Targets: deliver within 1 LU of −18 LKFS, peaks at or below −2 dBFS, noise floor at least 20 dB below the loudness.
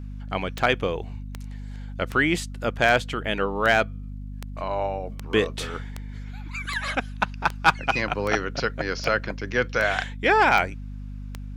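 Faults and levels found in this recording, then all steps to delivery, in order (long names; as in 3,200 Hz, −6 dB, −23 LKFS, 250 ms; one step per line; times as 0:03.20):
number of clicks 15; mains hum 50 Hz; hum harmonics up to 250 Hz; level of the hum −33 dBFS; integrated loudness −24.5 LKFS; sample peak −6.0 dBFS; target loudness −18.0 LKFS
→ click removal
hum removal 50 Hz, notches 5
level +6.5 dB
brickwall limiter −2 dBFS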